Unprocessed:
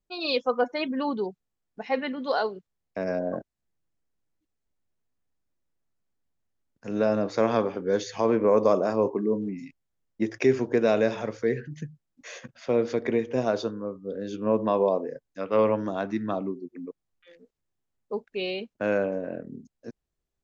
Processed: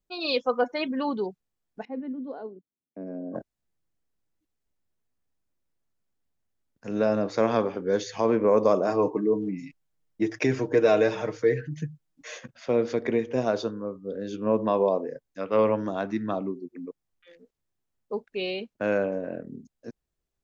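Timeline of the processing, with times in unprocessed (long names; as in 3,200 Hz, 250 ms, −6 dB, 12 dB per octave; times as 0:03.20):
0:01.85–0:03.35: resonant band-pass 270 Hz, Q 2.4
0:08.87–0:12.37: comb filter 6.5 ms, depth 68%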